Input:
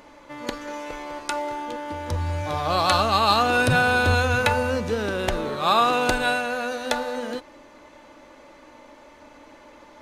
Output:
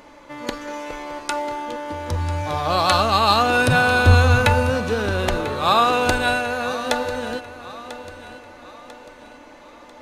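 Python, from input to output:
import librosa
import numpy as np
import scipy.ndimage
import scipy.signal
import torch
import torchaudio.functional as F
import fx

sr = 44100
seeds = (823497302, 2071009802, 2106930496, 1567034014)

p1 = fx.low_shelf(x, sr, hz=150.0, db=10.0, at=(4.05, 4.7))
p2 = p1 + fx.echo_feedback(p1, sr, ms=994, feedback_pct=44, wet_db=-15.0, dry=0)
y = F.gain(torch.from_numpy(p2), 2.5).numpy()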